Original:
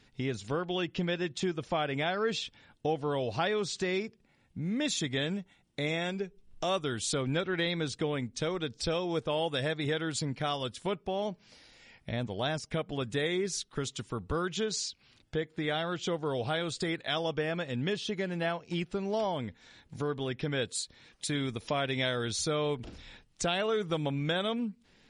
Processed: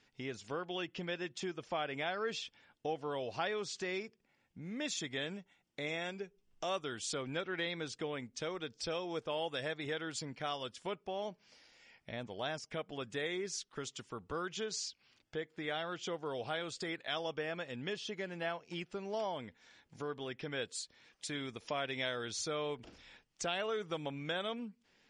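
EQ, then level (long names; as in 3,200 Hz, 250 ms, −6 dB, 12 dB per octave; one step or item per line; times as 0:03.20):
Chebyshev low-pass filter 6,400 Hz, order 2
low-shelf EQ 210 Hz −12 dB
parametric band 3,900 Hz −6.5 dB 0.24 octaves
−4.0 dB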